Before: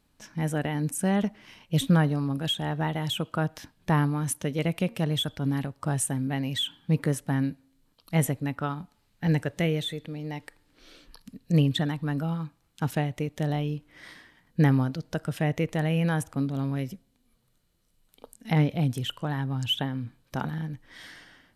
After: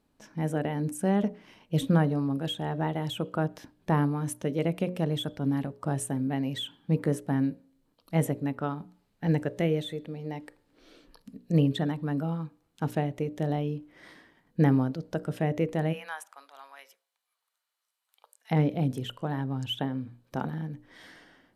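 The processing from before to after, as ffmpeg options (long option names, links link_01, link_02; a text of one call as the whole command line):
ffmpeg -i in.wav -filter_complex "[0:a]asplit=3[link_01][link_02][link_03];[link_01]afade=type=out:start_time=15.92:duration=0.02[link_04];[link_02]highpass=frequency=910:width=0.5412,highpass=frequency=910:width=1.3066,afade=type=in:start_time=15.92:duration=0.02,afade=type=out:start_time=18.5:duration=0.02[link_05];[link_03]afade=type=in:start_time=18.5:duration=0.02[link_06];[link_04][link_05][link_06]amix=inputs=3:normalize=0,equalizer=frequency=400:width_type=o:width=2.9:gain=10,bandreject=frequency=60:width_type=h:width=6,bandreject=frequency=120:width_type=h:width=6,bandreject=frequency=180:width_type=h:width=6,bandreject=frequency=240:width_type=h:width=6,bandreject=frequency=300:width_type=h:width=6,bandreject=frequency=360:width_type=h:width=6,bandreject=frequency=420:width_type=h:width=6,bandreject=frequency=480:width_type=h:width=6,bandreject=frequency=540:width_type=h:width=6,bandreject=frequency=600:width_type=h:width=6,volume=-7.5dB" out.wav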